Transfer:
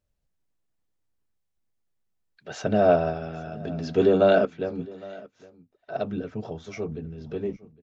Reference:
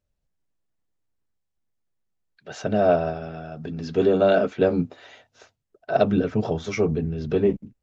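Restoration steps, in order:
echo removal 811 ms −21.5 dB
level correction +10 dB, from 0:04.45

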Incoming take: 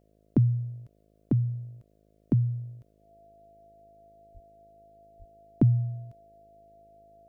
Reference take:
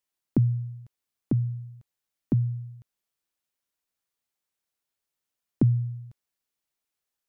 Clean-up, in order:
hum removal 52.7 Hz, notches 13
notch filter 680 Hz, Q 30
high-pass at the plosives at 0:04.33/0:05.18

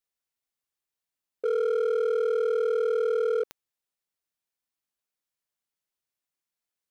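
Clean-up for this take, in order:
clipped peaks rebuilt −22 dBFS
click removal

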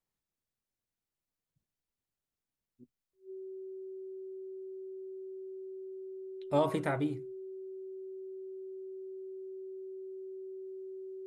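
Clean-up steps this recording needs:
notch filter 380 Hz, Q 30

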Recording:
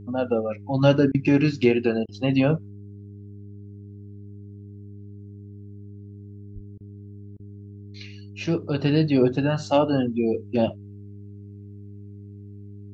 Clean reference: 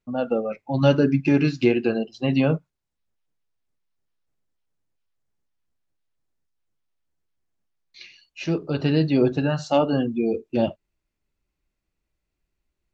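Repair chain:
hum removal 101.3 Hz, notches 4
0:06.54–0:06.66: high-pass filter 140 Hz 24 dB per octave
repair the gap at 0:01.12/0:02.06/0:06.78/0:07.37, 24 ms

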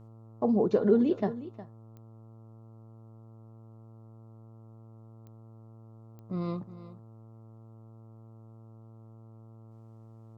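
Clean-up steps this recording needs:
click removal
hum removal 112.1 Hz, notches 12
echo removal 361 ms −15 dB

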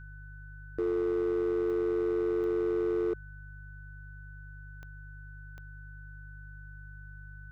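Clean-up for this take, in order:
clipped peaks rebuilt −25 dBFS
click removal
hum removal 49.9 Hz, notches 3
notch filter 1,500 Hz, Q 30

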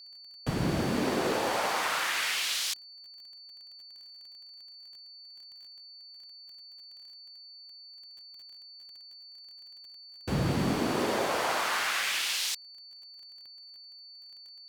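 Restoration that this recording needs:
click removal
notch filter 4,500 Hz, Q 30

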